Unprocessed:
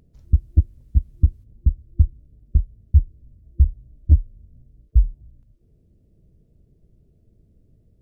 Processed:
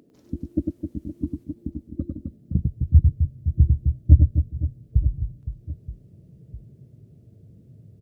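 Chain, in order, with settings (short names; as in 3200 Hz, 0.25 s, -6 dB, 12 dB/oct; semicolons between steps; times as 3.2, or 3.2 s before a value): reverse bouncing-ball echo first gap 0.1 s, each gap 1.6×, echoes 5; high-pass sweep 290 Hz -> 120 Hz, 2.11–2.81; gain +4 dB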